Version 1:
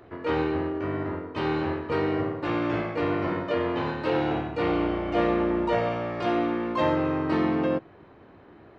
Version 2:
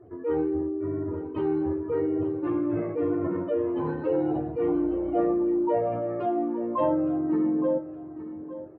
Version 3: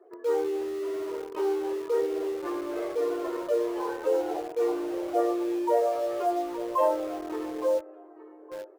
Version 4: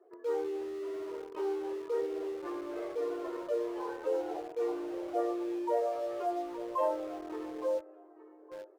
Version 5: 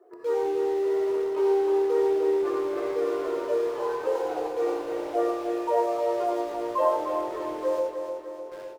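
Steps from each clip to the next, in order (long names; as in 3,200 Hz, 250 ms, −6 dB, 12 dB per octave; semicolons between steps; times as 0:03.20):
expanding power law on the bin magnitudes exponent 2.1; repeating echo 866 ms, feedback 24%, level −13.5 dB
elliptic high-pass filter 390 Hz, stop band 60 dB; in parallel at −10.5 dB: bit reduction 6 bits
high-shelf EQ 8,600 Hz −8.5 dB; level −6.5 dB
on a send: repeating echo 303 ms, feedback 54%, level −7 dB; on the sum: reverb whose tail is shaped and stops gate 130 ms rising, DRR 1.5 dB; level +5.5 dB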